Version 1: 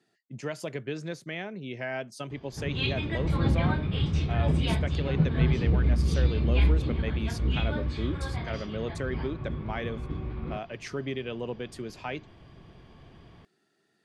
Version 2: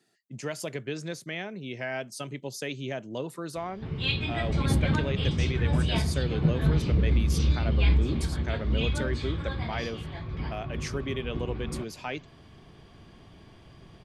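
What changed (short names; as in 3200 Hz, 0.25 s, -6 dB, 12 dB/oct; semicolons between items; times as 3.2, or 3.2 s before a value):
background: entry +1.25 s; master: add high shelf 5600 Hz +11 dB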